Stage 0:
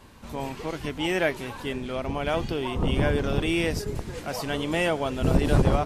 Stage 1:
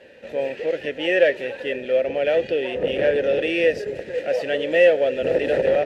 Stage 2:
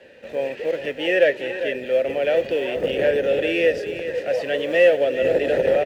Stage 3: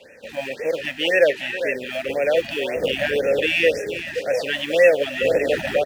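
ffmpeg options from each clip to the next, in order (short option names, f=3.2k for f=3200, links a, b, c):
-filter_complex "[0:a]aeval=exprs='0.473*sin(PI/2*3.16*val(0)/0.473)':c=same,aeval=exprs='0.473*(cos(1*acos(clip(val(0)/0.473,-1,1)))-cos(1*PI/2))+0.0188*(cos(8*acos(clip(val(0)/0.473,-1,1)))-cos(8*PI/2))':c=same,asplit=3[a][b][c];[a]bandpass=f=530:t=q:w=8,volume=0dB[d];[b]bandpass=f=1.84k:t=q:w=8,volume=-6dB[e];[c]bandpass=f=2.48k:t=q:w=8,volume=-9dB[f];[d][e][f]amix=inputs=3:normalize=0,volume=4dB"
-filter_complex "[0:a]acrossover=split=220|910[a][b][c];[a]acrusher=samples=23:mix=1:aa=0.000001:lfo=1:lforange=23:lforate=0.51[d];[d][b][c]amix=inputs=3:normalize=0,aecho=1:1:405:0.282"
-af "highshelf=f=2.1k:g=10,bandreject=f=360:w=12,afftfilt=real='re*(1-between(b*sr/1024,390*pow(3900/390,0.5+0.5*sin(2*PI*1.9*pts/sr))/1.41,390*pow(3900/390,0.5+0.5*sin(2*PI*1.9*pts/sr))*1.41))':imag='im*(1-between(b*sr/1024,390*pow(3900/390,0.5+0.5*sin(2*PI*1.9*pts/sr))/1.41,390*pow(3900/390,0.5+0.5*sin(2*PI*1.9*pts/sr))*1.41))':win_size=1024:overlap=0.75"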